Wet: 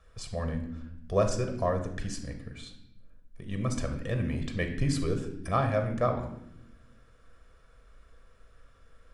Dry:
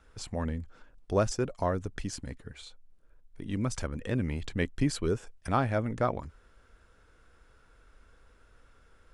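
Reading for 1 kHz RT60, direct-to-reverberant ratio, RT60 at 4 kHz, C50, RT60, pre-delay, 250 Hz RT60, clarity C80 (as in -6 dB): 0.65 s, 5.0 dB, 0.65 s, 8.5 dB, 0.85 s, 6 ms, 1.7 s, 11.0 dB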